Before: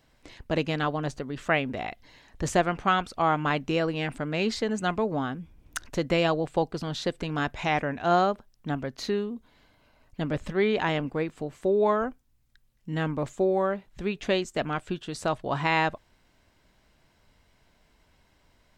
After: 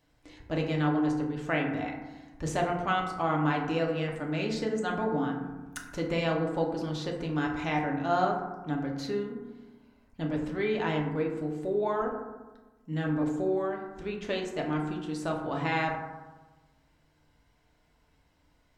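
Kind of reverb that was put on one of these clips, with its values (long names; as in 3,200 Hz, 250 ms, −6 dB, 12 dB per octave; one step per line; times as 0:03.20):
feedback delay network reverb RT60 1.2 s, low-frequency decay 1.3×, high-frequency decay 0.35×, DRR −0.5 dB
level −7.5 dB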